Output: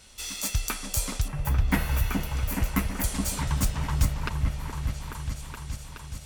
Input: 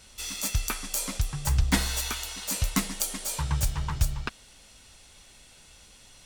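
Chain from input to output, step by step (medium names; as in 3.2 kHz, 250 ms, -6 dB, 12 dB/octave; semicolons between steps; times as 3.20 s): 1.28–3.04 s: high-order bell 5.6 kHz -13.5 dB; delay with an opening low-pass 422 ms, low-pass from 750 Hz, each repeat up 1 oct, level -3 dB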